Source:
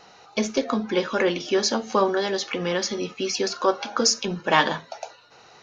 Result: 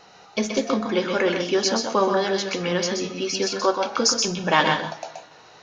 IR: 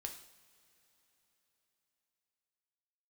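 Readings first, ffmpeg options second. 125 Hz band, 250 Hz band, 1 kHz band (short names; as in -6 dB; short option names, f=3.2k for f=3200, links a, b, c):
+3.0 dB, +1.5 dB, +1.5 dB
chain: -filter_complex "[0:a]asplit=2[a][b];[1:a]atrim=start_sample=2205,asetrate=83790,aresample=44100,adelay=126[c];[b][c]afir=irnorm=-1:irlink=0,volume=4.5dB[d];[a][d]amix=inputs=2:normalize=0"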